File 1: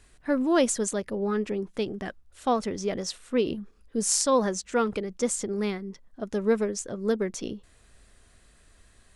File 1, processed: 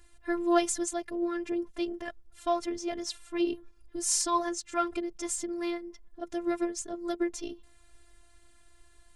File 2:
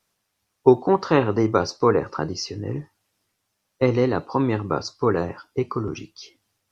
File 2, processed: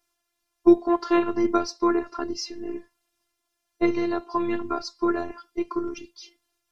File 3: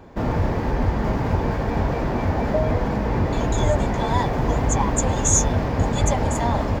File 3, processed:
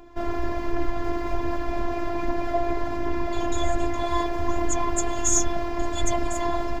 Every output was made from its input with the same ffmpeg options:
ffmpeg -i in.wav -af "aphaser=in_gain=1:out_gain=1:delay=2.9:decay=0.3:speed=1.3:type=triangular,afftfilt=real='hypot(re,im)*cos(PI*b)':imag='0':win_size=512:overlap=0.75" out.wav

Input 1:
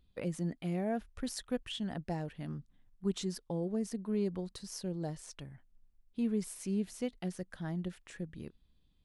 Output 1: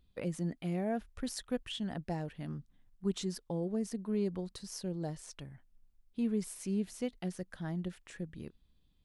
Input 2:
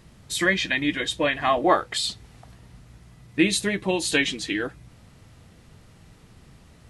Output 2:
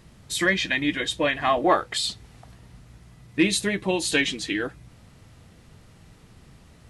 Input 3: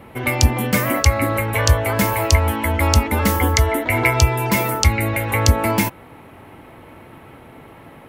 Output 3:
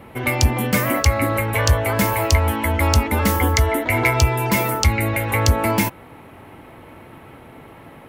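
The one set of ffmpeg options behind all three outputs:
ffmpeg -i in.wav -af "asoftclip=type=tanh:threshold=-5dB" out.wav

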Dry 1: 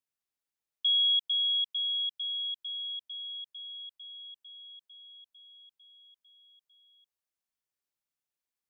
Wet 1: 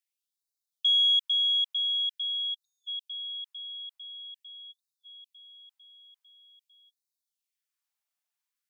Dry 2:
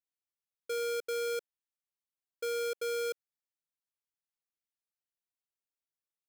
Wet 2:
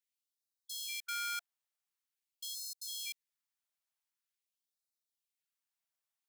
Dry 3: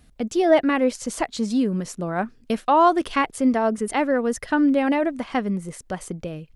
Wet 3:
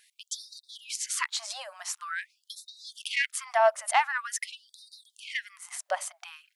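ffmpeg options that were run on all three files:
ffmpeg -i in.wav -af "aeval=exprs='0.562*(cos(1*acos(clip(val(0)/0.562,-1,1)))-cos(1*PI/2))+0.0631*(cos(2*acos(clip(val(0)/0.562,-1,1)))-cos(2*PI/2))+0.0447*(cos(5*acos(clip(val(0)/0.562,-1,1)))-cos(5*PI/2))':channel_layout=same,afftfilt=real='re*gte(b*sr/1024,550*pow(3700/550,0.5+0.5*sin(2*PI*0.46*pts/sr)))':imag='im*gte(b*sr/1024,550*pow(3700/550,0.5+0.5*sin(2*PI*0.46*pts/sr)))':win_size=1024:overlap=0.75" out.wav

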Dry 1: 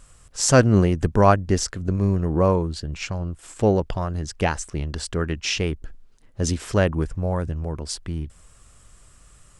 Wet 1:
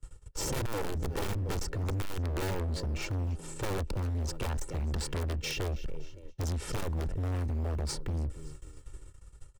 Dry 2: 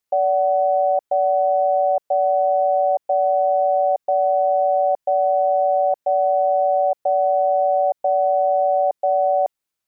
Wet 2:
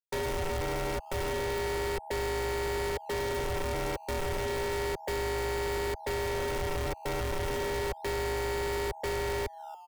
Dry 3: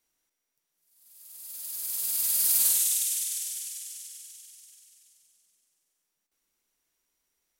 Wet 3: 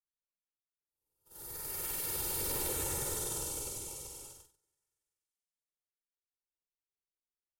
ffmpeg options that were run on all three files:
ffmpeg -i in.wav -filter_complex "[0:a]asplit=4[link_01][link_02][link_03][link_04];[link_02]adelay=281,afreqshift=71,volume=-22.5dB[link_05];[link_03]adelay=562,afreqshift=142,volume=-29.6dB[link_06];[link_04]adelay=843,afreqshift=213,volume=-36.8dB[link_07];[link_01][link_05][link_06][link_07]amix=inputs=4:normalize=0,asplit=2[link_08][link_09];[link_09]acrusher=samples=14:mix=1:aa=0.000001:lfo=1:lforange=22.4:lforate=0.32,volume=-10.5dB[link_10];[link_08][link_10]amix=inputs=2:normalize=0,aeval=exprs='(mod(3.76*val(0)+1,2)-1)/3.76':channel_layout=same,agate=range=-28dB:threshold=-46dB:ratio=16:detection=peak,acrossover=split=86|940[link_11][link_12][link_13];[link_11]acompressor=threshold=-29dB:ratio=4[link_14];[link_12]acompressor=threshold=-27dB:ratio=4[link_15];[link_13]acompressor=threshold=-30dB:ratio=4[link_16];[link_14][link_15][link_16]amix=inputs=3:normalize=0,aecho=1:1:2.2:0.76,acrossover=split=450[link_17][link_18];[link_17]acontrast=83[link_19];[link_19][link_18]amix=inputs=2:normalize=0,volume=24dB,asoftclip=hard,volume=-24dB,volume=-6dB" out.wav

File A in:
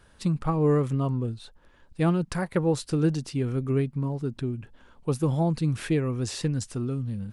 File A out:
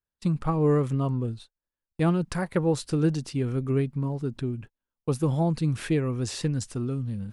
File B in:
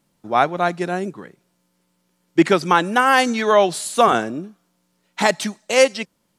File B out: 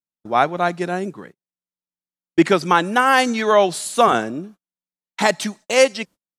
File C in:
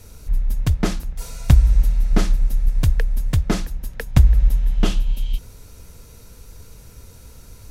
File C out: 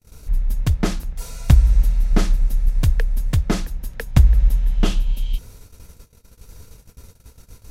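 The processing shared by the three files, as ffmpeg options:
ffmpeg -i in.wav -af "agate=range=-37dB:threshold=-40dB:ratio=16:detection=peak" out.wav

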